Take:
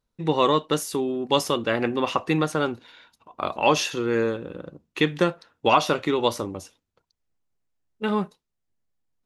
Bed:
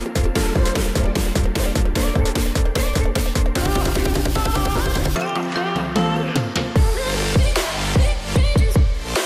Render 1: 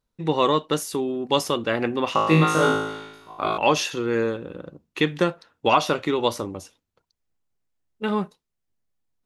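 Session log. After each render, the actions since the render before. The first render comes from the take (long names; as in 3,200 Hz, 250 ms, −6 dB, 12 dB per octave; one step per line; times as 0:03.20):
0:02.13–0:03.58: flutter between parallel walls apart 3.2 metres, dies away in 0.96 s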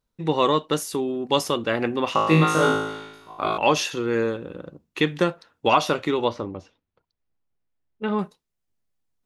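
0:06.24–0:08.19: high-frequency loss of the air 220 metres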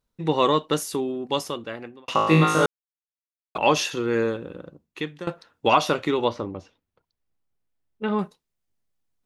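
0:00.90–0:02.08: fade out
0:02.66–0:03.55: silence
0:04.37–0:05.27: fade out, to −17 dB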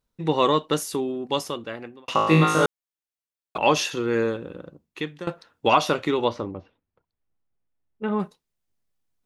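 0:06.51–0:08.20: high-frequency loss of the air 320 metres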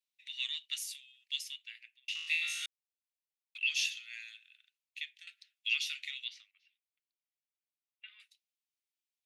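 Butterworth high-pass 2,200 Hz 48 dB per octave
high-shelf EQ 3,200 Hz −9 dB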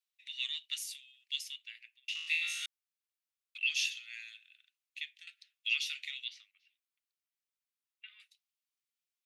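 Chebyshev high-pass filter 1,100 Hz, order 4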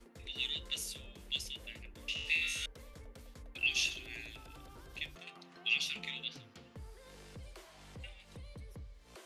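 mix in bed −34 dB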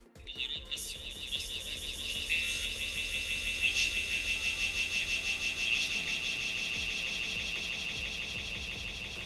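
echo that builds up and dies away 165 ms, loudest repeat 8, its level −7 dB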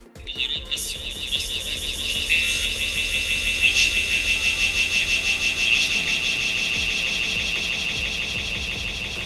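level +11.5 dB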